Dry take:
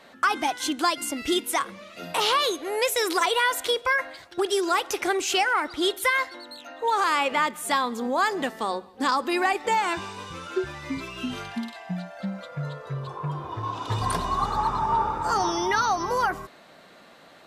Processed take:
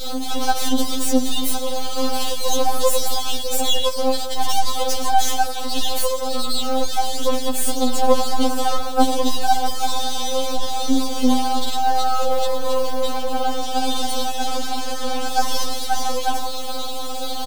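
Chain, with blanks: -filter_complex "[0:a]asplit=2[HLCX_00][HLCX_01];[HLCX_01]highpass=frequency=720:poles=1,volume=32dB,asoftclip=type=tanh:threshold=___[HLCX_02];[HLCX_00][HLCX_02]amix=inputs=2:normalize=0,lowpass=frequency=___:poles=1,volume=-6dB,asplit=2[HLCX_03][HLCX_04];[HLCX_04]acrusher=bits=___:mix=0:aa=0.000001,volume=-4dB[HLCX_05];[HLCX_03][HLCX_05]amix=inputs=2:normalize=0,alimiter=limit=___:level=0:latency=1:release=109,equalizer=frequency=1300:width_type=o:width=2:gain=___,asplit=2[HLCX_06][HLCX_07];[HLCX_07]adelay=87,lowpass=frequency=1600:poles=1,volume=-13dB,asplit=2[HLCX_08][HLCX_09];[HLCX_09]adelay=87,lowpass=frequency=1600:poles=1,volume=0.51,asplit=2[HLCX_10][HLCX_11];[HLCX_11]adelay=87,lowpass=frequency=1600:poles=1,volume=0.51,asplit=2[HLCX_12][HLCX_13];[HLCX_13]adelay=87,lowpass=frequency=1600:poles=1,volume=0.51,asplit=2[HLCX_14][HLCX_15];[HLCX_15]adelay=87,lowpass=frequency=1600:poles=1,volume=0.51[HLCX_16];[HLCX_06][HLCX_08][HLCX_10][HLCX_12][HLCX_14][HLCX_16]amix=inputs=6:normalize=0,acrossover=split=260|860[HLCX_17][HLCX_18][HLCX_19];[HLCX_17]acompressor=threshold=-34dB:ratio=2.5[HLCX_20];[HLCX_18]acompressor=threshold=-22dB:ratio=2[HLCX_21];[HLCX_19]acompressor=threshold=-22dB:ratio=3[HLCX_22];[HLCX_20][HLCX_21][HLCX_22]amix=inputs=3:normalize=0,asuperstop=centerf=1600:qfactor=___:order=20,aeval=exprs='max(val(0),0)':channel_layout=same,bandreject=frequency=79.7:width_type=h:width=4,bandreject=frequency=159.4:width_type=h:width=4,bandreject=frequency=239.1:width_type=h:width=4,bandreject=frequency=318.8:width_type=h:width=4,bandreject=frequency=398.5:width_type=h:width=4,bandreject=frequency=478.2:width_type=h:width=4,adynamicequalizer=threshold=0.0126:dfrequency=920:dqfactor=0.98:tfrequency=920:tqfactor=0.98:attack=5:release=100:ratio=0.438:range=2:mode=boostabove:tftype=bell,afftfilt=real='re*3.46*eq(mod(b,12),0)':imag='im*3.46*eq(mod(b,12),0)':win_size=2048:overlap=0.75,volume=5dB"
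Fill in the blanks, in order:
-9.5dB, 7000, 4, -11dB, -3.5, 0.71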